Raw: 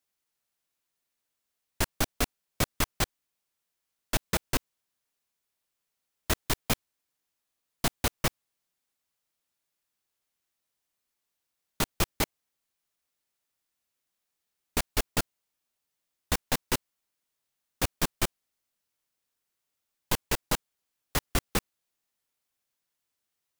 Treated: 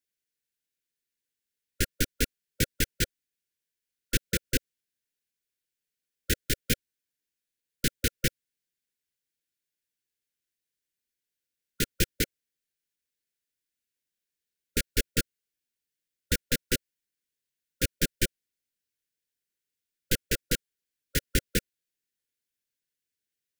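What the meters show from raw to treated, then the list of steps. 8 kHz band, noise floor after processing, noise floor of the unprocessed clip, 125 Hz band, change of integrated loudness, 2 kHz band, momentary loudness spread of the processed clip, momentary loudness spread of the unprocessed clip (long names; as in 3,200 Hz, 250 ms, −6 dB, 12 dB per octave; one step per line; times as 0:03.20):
+1.0 dB, below −85 dBFS, −84 dBFS, +1.5 dB, +0.5 dB, +1.0 dB, 4 LU, 4 LU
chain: linear-phase brick-wall band-stop 550–1,400 Hz
expander for the loud parts 1.5 to 1, over −37 dBFS
level +2.5 dB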